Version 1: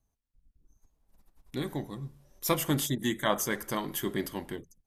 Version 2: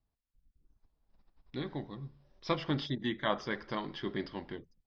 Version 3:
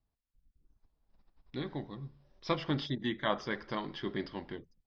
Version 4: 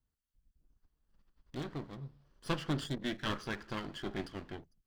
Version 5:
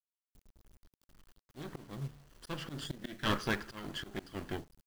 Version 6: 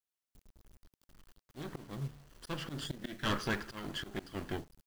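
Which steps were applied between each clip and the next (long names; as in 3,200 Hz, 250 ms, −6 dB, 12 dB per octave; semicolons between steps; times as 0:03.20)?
Chebyshev low-pass filter 5,200 Hz, order 6; level −3.5 dB
no processing that can be heard
lower of the sound and its delayed copy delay 0.66 ms; level −1 dB
volume swells 284 ms; log-companded quantiser 6 bits; level +6 dB
soft clipping −26.5 dBFS, distortion −14 dB; level +1.5 dB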